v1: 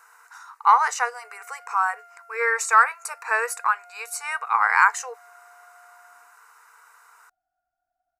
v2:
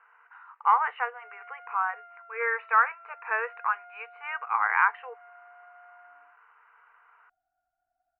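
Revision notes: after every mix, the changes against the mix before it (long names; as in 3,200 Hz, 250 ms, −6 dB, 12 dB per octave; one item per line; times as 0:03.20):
speech −5.5 dB
master: add Butterworth low-pass 3,000 Hz 72 dB per octave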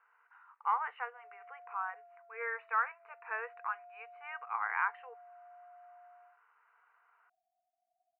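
speech −10.0 dB
background: add flat-topped band-pass 640 Hz, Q 3.5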